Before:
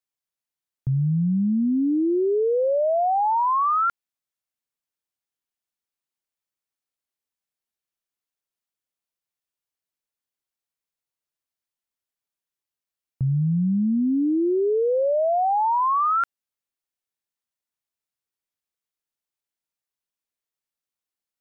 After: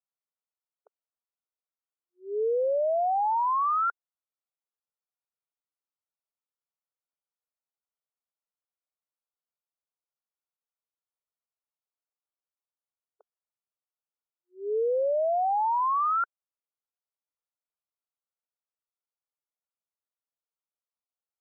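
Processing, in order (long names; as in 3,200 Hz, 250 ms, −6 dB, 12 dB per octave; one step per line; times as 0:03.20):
linear-phase brick-wall band-pass 410–1,500 Hz
level −4.5 dB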